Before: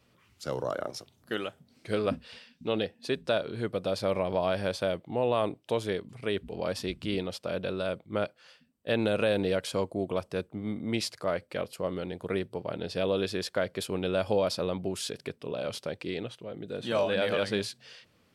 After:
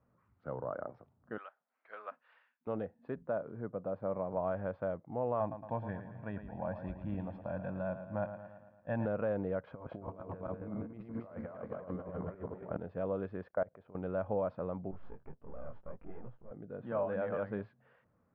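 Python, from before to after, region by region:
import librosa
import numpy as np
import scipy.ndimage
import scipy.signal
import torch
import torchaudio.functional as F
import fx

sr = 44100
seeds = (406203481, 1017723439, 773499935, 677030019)

y = fx.chain(x, sr, fx.highpass(hz=890.0, slope=12),
    fx.tilt_eq(slope=3.5), at=(1.38, 2.67))
y = fx.chain(y, sr, fx.highpass(hz=110.0, slope=12),
    fx.high_shelf(hz=2500.0, db=-11.0), at=(3.23, 4.37))
y = fx.chain(y, sr, fx.comb(ms=1.2, depth=0.75),
    fx.echo_feedback(ms=112, feedback_pct=57, wet_db=-10.0), at=(5.4, 9.06))
y = fx.chain(y, sr, fx.reverse_delay_fb(ms=134, feedback_pct=61, wet_db=-1.0),
    fx.over_compress(threshold_db=-34.0, ratio=-0.5), at=(9.67, 12.77))
y = fx.chain(y, sr, fx.peak_eq(hz=660.0, db=5.5, octaves=0.85),
    fx.level_steps(step_db=23), at=(13.48, 13.95))
y = fx.chain(y, sr, fx.halfwave_gain(db=-12.0),
    fx.low_shelf(hz=200.0, db=7.5),
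    fx.detune_double(cents=29), at=(14.91, 16.51))
y = scipy.signal.sosfilt(scipy.signal.butter(4, 1400.0, 'lowpass', fs=sr, output='sos'), y)
y = fx.peak_eq(y, sr, hz=370.0, db=-6.0, octaves=0.62)
y = F.gain(torch.from_numpy(y), -5.5).numpy()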